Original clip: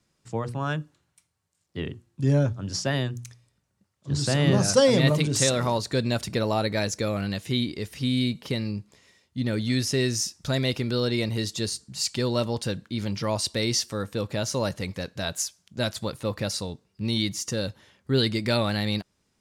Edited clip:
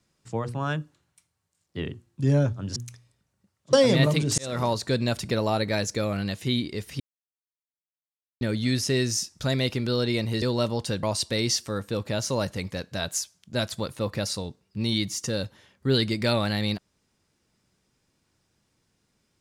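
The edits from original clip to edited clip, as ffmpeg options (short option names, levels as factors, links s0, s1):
-filter_complex "[0:a]asplit=8[s0][s1][s2][s3][s4][s5][s6][s7];[s0]atrim=end=2.762[s8];[s1]atrim=start=3.128:end=4.102[s9];[s2]atrim=start=4.768:end=5.42,asetpts=PTS-STARTPTS,afade=t=out:st=0.648:d=0.004:c=hsin[s10];[s3]atrim=start=5.42:end=8.04,asetpts=PTS-STARTPTS,afade=t=in:d=0.26,afade=t=out:st=2.616:d=0.004:c=hsin[s11];[s4]atrim=start=8.04:end=9.45,asetpts=PTS-STARTPTS,volume=0[s12];[s5]atrim=start=9.45:end=11.462,asetpts=PTS-STARTPTS,afade=t=in:d=0.004:c=hsin[s13];[s6]atrim=start=12.188:end=12.802[s14];[s7]atrim=start=13.268[s15];[s8][s9]acrossfade=d=0.004:c1=hsin:c2=hsin[s16];[s10][s11][s12][s13]concat=n=4:v=0:a=1[s17];[s16][s17]acrossfade=d=0.004:c1=hsin:c2=hsin[s18];[s18][s14]acrossfade=d=0.004:c1=hsin:c2=hsin[s19];[s19][s15]acrossfade=d=0.004:c1=hsin:c2=hsin"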